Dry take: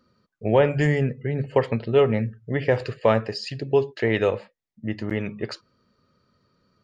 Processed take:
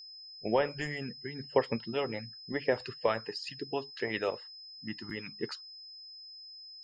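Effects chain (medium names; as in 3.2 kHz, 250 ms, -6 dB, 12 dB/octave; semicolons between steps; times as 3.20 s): spectral noise reduction 19 dB; harmonic-percussive split harmonic -15 dB; whistle 5.1 kHz -41 dBFS; trim -5.5 dB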